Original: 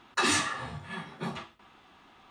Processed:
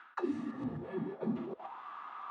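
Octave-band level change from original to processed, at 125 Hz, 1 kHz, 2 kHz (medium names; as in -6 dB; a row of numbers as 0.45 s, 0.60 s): -4.0 dB, -8.5 dB, -19.0 dB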